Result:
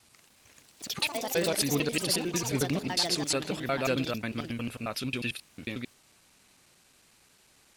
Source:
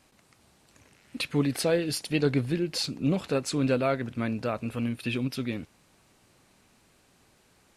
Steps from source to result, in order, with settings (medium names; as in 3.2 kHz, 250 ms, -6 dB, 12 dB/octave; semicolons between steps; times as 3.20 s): slices played last to first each 90 ms, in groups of 5; tilt shelf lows -5 dB, about 1.5 kHz; ever faster or slower copies 132 ms, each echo +5 st, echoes 3, each echo -6 dB